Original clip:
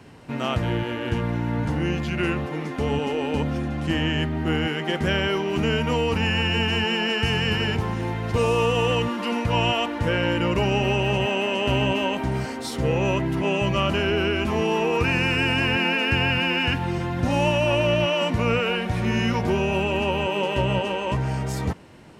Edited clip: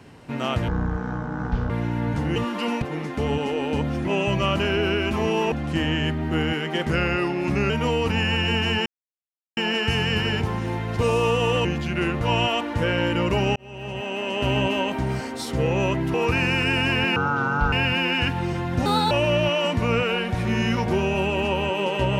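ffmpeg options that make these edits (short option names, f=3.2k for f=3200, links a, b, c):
-filter_complex "[0:a]asplit=18[a][b][c][d][e][f][g][h][i][j][k][l][m][n][o][p][q][r];[a]atrim=end=0.684[s];[b]atrim=start=0.68:end=1.21,asetpts=PTS-STARTPTS,asetrate=22932,aresample=44100,atrim=end_sample=44948,asetpts=PTS-STARTPTS[t];[c]atrim=start=1.206:end=1.872[u];[d]atrim=start=8.998:end=9.462[v];[e]atrim=start=2.428:end=3.662[w];[f]atrim=start=13.388:end=14.862[x];[g]atrim=start=3.658:end=5.044[y];[h]atrim=start=5.04:end=5.76,asetpts=PTS-STARTPTS,asetrate=39690,aresample=44100[z];[i]atrim=start=5.756:end=6.92,asetpts=PTS-STARTPTS,afade=t=out:st=1.16:d=0.004:c=hsin,apad=pad_dur=0.71[aa];[j]atrim=start=6.92:end=9.002,asetpts=PTS-STARTPTS,afade=t=in:d=0.004:c=hsin[ab];[k]atrim=start=1.868:end=2.432[ac];[l]atrim=start=9.458:end=10.81,asetpts=PTS-STARTPTS,afade=t=out:st=1.348:d=0.004:c=hsin[ad];[m]atrim=start=10.81:end=13.392,asetpts=PTS-STARTPTS,afade=t=in:d=1.02[ae];[n]atrim=start=14.858:end=15.884[af];[o]atrim=start=15.88:end=16.18,asetpts=PTS-STARTPTS,asetrate=23373,aresample=44100,atrim=end_sample=24962,asetpts=PTS-STARTPTS[ag];[p]atrim=start=16.176:end=17.314[ah];[q]atrim=start=17.31:end=17.68,asetpts=PTS-STARTPTS,asetrate=63945,aresample=44100,atrim=end_sample=11253,asetpts=PTS-STARTPTS[ai];[r]atrim=start=17.676[aj];[s][t]acrossfade=d=0.004:c1=hsin:c2=hsin[ak];[ak][u]acrossfade=d=0.004:c1=hsin:c2=hsin[al];[al][v]acrossfade=d=0.004:c1=hsin:c2=hsin[am];[am][w]acrossfade=d=0.004:c1=hsin:c2=hsin[an];[an][x]acrossfade=d=0.004:c1=hsin:c2=hsin[ao];[ao][y]acrossfade=d=0.004:c1=hsin:c2=hsin[ap];[ap][z]acrossfade=d=0.004:c1=hsin:c2=hsin[aq];[aa][ab]concat=n=2:v=0:a=1[ar];[aq][ar]acrossfade=d=0.004:c1=hsin:c2=hsin[as];[as][ac]acrossfade=d=0.004:c1=hsin:c2=hsin[at];[ad][ae]concat=n=2:v=0:a=1[au];[at][au]acrossfade=d=0.004:c1=hsin:c2=hsin[av];[av][af]acrossfade=d=0.004:c1=hsin:c2=hsin[aw];[aw][ag]acrossfade=d=0.004:c1=hsin:c2=hsin[ax];[ax][ah]acrossfade=d=0.004:c1=hsin:c2=hsin[ay];[ay][ai]acrossfade=d=0.004:c1=hsin:c2=hsin[az];[az][aj]acrossfade=d=0.004:c1=hsin:c2=hsin"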